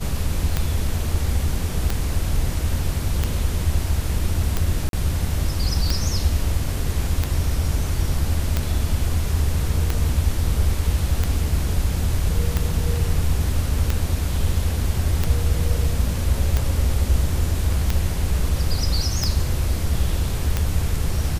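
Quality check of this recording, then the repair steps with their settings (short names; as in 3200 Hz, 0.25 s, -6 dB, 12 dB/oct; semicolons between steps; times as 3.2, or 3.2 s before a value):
tick 45 rpm -7 dBFS
4.89–4.93 gap 42 ms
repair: de-click; interpolate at 4.89, 42 ms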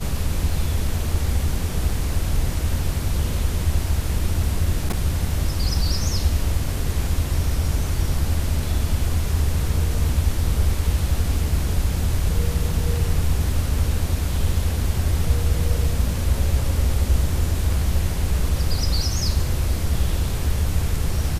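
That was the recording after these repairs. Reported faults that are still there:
none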